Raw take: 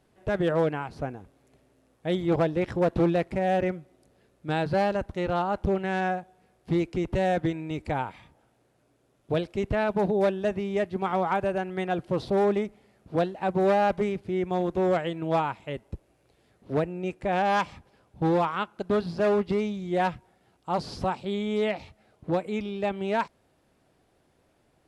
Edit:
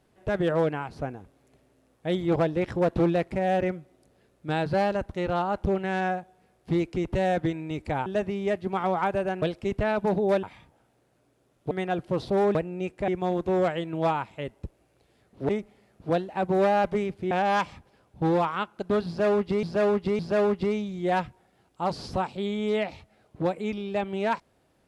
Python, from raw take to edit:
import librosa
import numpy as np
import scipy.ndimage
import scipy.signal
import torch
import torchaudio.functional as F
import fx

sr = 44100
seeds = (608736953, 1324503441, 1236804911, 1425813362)

y = fx.edit(x, sr, fx.swap(start_s=8.06, length_s=1.28, other_s=10.35, other_length_s=1.36),
    fx.swap(start_s=12.55, length_s=1.82, other_s=16.78, other_length_s=0.53),
    fx.repeat(start_s=19.07, length_s=0.56, count=3), tone=tone)